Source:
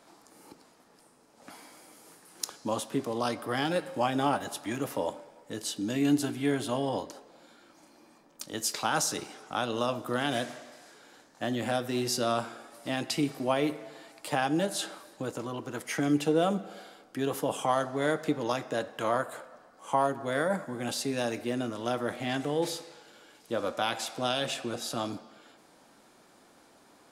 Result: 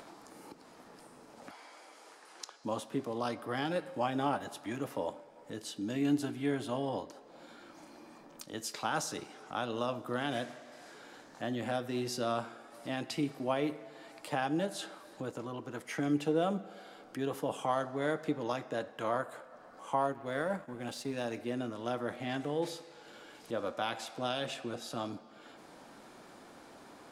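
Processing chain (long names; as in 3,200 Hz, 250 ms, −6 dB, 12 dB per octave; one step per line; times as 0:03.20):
0:20.12–0:21.31: mu-law and A-law mismatch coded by A
high-shelf EQ 4,600 Hz −7.5 dB
upward compression, threshold −38 dBFS
0:01.51–0:02.64: band-pass filter 520–7,100 Hz
level −4.5 dB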